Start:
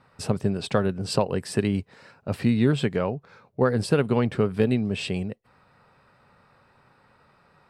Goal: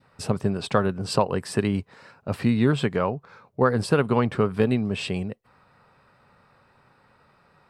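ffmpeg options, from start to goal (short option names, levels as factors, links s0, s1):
-af "adynamicequalizer=threshold=0.00794:dfrequency=1100:dqfactor=1.6:tfrequency=1100:tqfactor=1.6:attack=5:release=100:ratio=0.375:range=3.5:mode=boostabove:tftype=bell"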